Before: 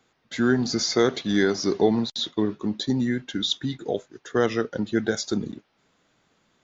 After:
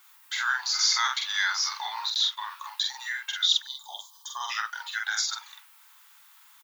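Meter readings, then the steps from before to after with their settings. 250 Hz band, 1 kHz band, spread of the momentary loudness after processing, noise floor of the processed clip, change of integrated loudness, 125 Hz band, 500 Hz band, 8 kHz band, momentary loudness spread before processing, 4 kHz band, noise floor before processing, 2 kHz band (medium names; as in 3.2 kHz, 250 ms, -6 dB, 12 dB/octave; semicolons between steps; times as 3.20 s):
under -40 dB, +1.5 dB, 15 LU, -56 dBFS, -2.0 dB, under -40 dB, under -35 dB, no reading, 8 LU, +4.5 dB, -69 dBFS, +3.5 dB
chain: Chebyshev high-pass 870 Hz, order 6; added noise violet -66 dBFS; in parallel at 0 dB: compression, threshold -41 dBFS, peak gain reduction 19.5 dB; on the sum: time-frequency box 3.62–4.50 s, 1.2–3 kHz -26 dB; doubling 46 ms -2.5 dB; trim +1 dB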